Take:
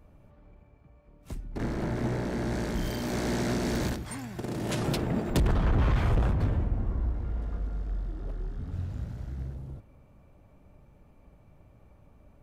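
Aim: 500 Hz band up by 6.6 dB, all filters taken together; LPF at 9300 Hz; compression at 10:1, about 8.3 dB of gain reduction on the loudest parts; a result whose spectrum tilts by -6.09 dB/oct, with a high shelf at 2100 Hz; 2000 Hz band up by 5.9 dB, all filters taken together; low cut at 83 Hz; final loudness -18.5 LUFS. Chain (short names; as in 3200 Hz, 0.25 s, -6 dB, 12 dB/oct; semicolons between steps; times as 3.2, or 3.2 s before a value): HPF 83 Hz; LPF 9300 Hz; bell 500 Hz +8.5 dB; bell 2000 Hz +8.5 dB; high shelf 2100 Hz -3 dB; compressor 10:1, threshold -28 dBFS; gain +16 dB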